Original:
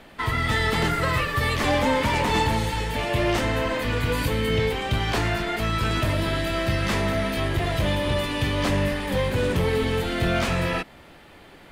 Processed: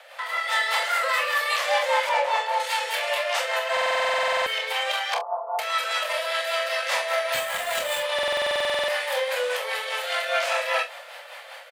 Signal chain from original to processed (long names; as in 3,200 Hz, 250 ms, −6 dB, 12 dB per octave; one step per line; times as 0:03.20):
0:05.14–0:05.59: Chebyshev low-pass with heavy ripple 1,200 Hz, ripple 6 dB
brickwall limiter −24 dBFS, peak gain reduction 9 dB
Butterworth high-pass 510 Hz 96 dB per octave
0:02.09–0:02.60: spectral tilt −3.5 dB per octave
0:07.34–0:08.00: bad sample-rate conversion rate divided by 4×, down none, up hold
rotating-speaker cabinet horn 5 Hz
ambience of single reflections 28 ms −7 dB, 44 ms −9.5 dB, 70 ms −16 dB
automatic gain control gain up to 5.5 dB
buffer that repeats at 0:03.72/0:08.14, samples 2,048, times 15
level +6 dB